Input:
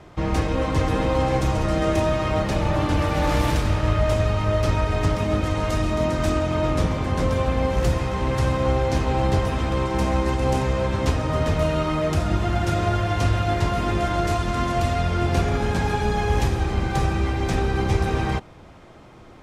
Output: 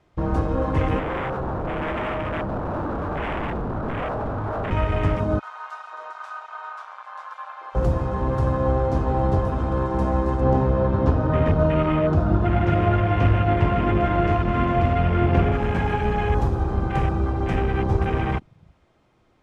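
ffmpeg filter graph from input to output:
ffmpeg -i in.wav -filter_complex "[0:a]asettb=1/sr,asplit=3[link_01][link_02][link_03];[link_01]atrim=end=0.994[link_04];[link_02]atrim=start=0.99:end=4.71,asetpts=PTS-STARTPTS,afade=type=in:duration=0.004:curve=qsin,afade=type=out:start_time=3.716:duration=0.004:curve=qsin,lowpass=1600,aeval=exprs='0.0841*(abs(mod(val(0)/0.0841+3,4)-2)-1)':channel_layout=same[link_05];[link_03]atrim=start=4.706[link_06];[link_04][link_05]acrossfade=duration=0.004:curve1=hsin:curve2=qsin[link_07];[link_07][link_06]acrossfade=duration=0.004:curve1=qsin:curve2=hsin,asettb=1/sr,asplit=3[link_08][link_09][link_10];[link_08]atrim=end=5.394[link_11];[link_09]atrim=start=5.39:end=7.75,asetpts=PTS-STARTPTS,afade=type=in:duration=0.004:curve=qsin,afade=type=out:start_time=2.356:duration=0.004:curve=qsin,highpass=frequency=1000:width=0.5412,highpass=frequency=1000:width=1.3066,aemphasis=mode=reproduction:type=50kf[link_12];[link_10]atrim=start=7.746[link_13];[link_11][link_12]acrossfade=duration=0.004:curve1=hsin:curve2=qsin[link_14];[link_14][link_13]acrossfade=duration=0.004:curve1=qsin:curve2=hsin,asettb=1/sr,asplit=3[link_15][link_16][link_17];[link_15]atrim=end=10.414[link_18];[link_16]atrim=start=10.41:end=15.52,asetpts=PTS-STARTPTS,afade=type=in:duration=0.004:curve=qsin,afade=type=out:start_time=5.106:duration=0.004:curve=qsin,lowpass=5100,equalizer=frequency=210:width=0.38:gain=4[link_19];[link_17]atrim=start=15.516[link_20];[link_18][link_19]acrossfade=duration=0.004:curve1=hsin:curve2=qsin[link_21];[link_21][link_20]acrossfade=duration=0.004:curve1=qsin:curve2=hsin,equalizer=frequency=2900:width=0.84:gain=2,afwtdn=0.0355" out.wav

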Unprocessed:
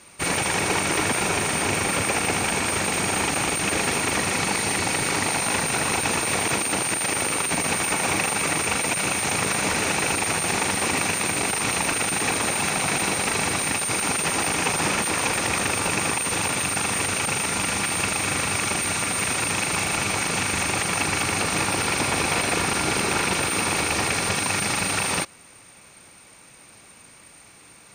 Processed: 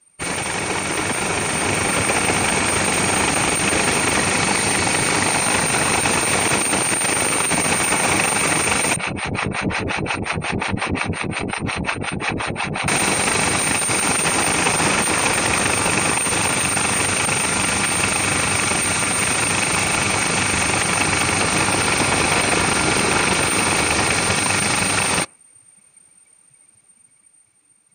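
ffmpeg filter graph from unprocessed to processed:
ffmpeg -i in.wav -filter_complex "[0:a]asettb=1/sr,asplit=3[link_01][link_02][link_03];[link_01]atrim=end=8.964[link_04];[link_02]atrim=start=8.96:end=12.88,asetpts=PTS-STARTPTS,afade=type=in:duration=0.004:curve=qsin,afade=type=out:start_time=3.916:duration=0.004:curve=qsin,acrossover=split=4900[link_05][link_06];[link_06]acompressor=threshold=-42dB:ratio=4:attack=1:release=60[link_07];[link_05][link_07]amix=inputs=2:normalize=0,lowshelf=frequency=190:gain=8.5,acrossover=split=570[link_08][link_09];[link_08]aeval=exprs='val(0)*(1-1/2+1/2*cos(2*PI*5.6*n/s))':channel_layout=same[link_10];[link_09]aeval=exprs='val(0)*(1-1/2-1/2*cos(2*PI*5.6*n/s))':channel_layout=same[link_11];[link_10][link_11]amix=inputs=2:normalize=0[link_12];[link_03]atrim=start=12.876[link_13];[link_04][link_12]acrossfade=duration=0.004:curve1=hsin:curve2=qsin[link_14];[link_14][link_13]acrossfade=duration=0.004:curve1=qsin:curve2=hsin,afftdn=noise_reduction=18:noise_floor=-40,dynaudnorm=framelen=290:gausssize=11:maxgain=5.5dB" out.wav

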